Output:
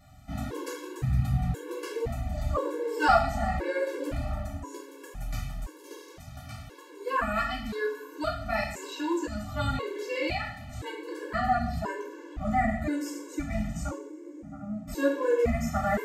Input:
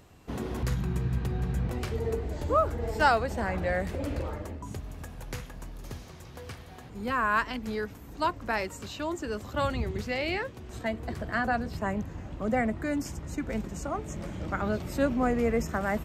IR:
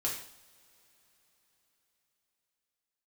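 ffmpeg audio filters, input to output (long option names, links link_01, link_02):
-filter_complex "[0:a]asettb=1/sr,asplit=3[link_01][link_02][link_03];[link_01]atrim=end=13.914[link_04];[link_02]atrim=start=13.91:end=14.88,asetpts=PTS-STARTPTS,afade=type=in:duration=0.004:curve=qsin,afade=type=out:start_time=0.966:duration=0.004:curve=qsin,bandpass=frequency=270:width_type=q:width=2.9:csg=0[link_05];[link_03]atrim=start=14.876[link_06];[link_04][link_05]acrossfade=duration=0.004:curve1=hsin:curve2=qsin[link_07];[link_07][link_06]acrossfade=duration=0.004:curve1=qsin:curve2=hsin[link_08];[1:a]atrim=start_sample=2205[link_09];[link_08][link_09]afir=irnorm=-1:irlink=0,afftfilt=real='re*gt(sin(2*PI*0.97*pts/sr)*(1-2*mod(floor(b*sr/1024/290),2)),0)':imag='im*gt(sin(2*PI*0.97*pts/sr)*(1-2*mod(floor(b*sr/1024/290),2)),0)':win_size=1024:overlap=0.75"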